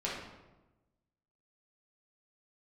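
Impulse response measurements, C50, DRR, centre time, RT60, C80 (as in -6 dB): 1.0 dB, -6.5 dB, 60 ms, 1.1 s, 4.5 dB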